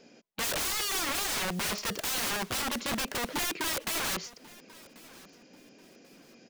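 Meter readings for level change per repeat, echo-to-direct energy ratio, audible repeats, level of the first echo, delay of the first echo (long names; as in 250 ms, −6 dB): −10.5 dB, −21.0 dB, 2, −21.5 dB, 1,089 ms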